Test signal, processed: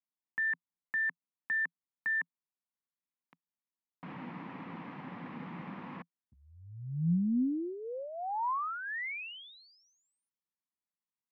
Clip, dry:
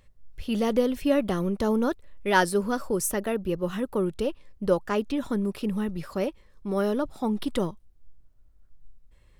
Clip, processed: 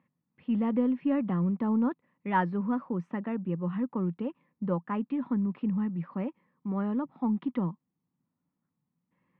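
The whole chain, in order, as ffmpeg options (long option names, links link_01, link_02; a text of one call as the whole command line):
ffmpeg -i in.wav -af "highpass=frequency=160:width=0.5412,highpass=frequency=160:width=1.3066,equalizer=frequency=170:width_type=q:width=4:gain=9,equalizer=frequency=250:width_type=q:width=4:gain=6,equalizer=frequency=410:width_type=q:width=4:gain=-9,equalizer=frequency=620:width_type=q:width=4:gain=-9,equalizer=frequency=1000:width_type=q:width=4:gain=4,equalizer=frequency=1500:width_type=q:width=4:gain=-7,lowpass=frequency=2100:width=0.5412,lowpass=frequency=2100:width=1.3066,aeval=exprs='0.299*(cos(1*acos(clip(val(0)/0.299,-1,1)))-cos(1*PI/2))+0.00211*(cos(4*acos(clip(val(0)/0.299,-1,1)))-cos(4*PI/2))':channel_layout=same,volume=-4.5dB" out.wav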